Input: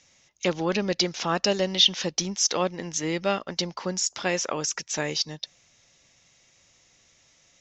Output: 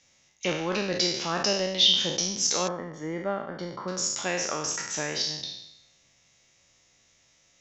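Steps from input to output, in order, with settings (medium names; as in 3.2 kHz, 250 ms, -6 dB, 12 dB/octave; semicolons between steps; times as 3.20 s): spectral sustain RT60 0.84 s; 2.68–3.88 s: Savitzky-Golay filter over 41 samples; trim -5 dB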